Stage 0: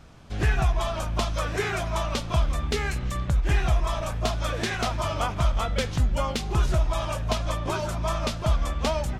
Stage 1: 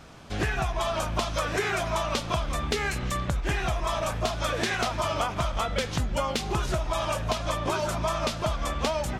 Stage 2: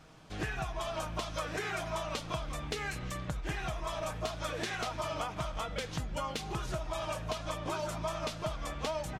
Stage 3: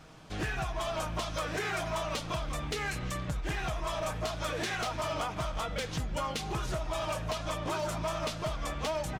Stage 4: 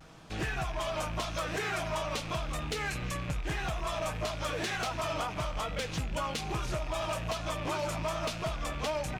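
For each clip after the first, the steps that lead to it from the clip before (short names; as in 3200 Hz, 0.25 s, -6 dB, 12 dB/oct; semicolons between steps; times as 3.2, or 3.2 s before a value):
low shelf 140 Hz -10 dB; compressor, threshold -29 dBFS, peak gain reduction 7.5 dB; gain +5.5 dB
comb 6.4 ms, depth 37%; gain -9 dB
overloaded stage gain 31.5 dB; gain +3.5 dB
rattling part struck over -47 dBFS, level -34 dBFS; vibrato 0.86 Hz 48 cents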